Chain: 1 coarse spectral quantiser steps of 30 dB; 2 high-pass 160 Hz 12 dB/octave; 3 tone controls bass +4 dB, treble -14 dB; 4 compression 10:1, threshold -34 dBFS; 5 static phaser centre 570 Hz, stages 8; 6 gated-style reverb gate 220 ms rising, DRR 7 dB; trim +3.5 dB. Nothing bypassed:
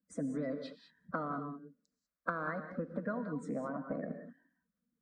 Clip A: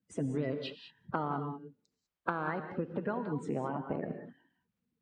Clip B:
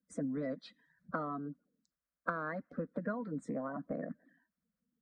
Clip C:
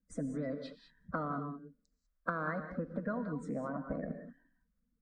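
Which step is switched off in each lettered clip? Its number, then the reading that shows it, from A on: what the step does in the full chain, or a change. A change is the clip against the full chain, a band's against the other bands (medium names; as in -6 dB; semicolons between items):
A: 5, 125 Hz band +4.0 dB; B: 6, momentary loudness spread change -3 LU; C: 2, 125 Hz band +2.5 dB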